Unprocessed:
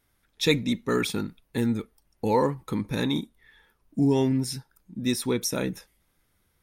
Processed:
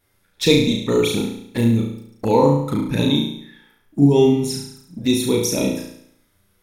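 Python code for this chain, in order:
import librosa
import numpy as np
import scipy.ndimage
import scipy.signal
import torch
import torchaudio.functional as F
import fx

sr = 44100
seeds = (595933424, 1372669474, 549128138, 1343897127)

y = fx.env_flanger(x, sr, rest_ms=10.7, full_db=-23.5)
y = fx.room_flutter(y, sr, wall_m=6.0, rt60_s=0.68)
y = y * librosa.db_to_amplitude(7.0)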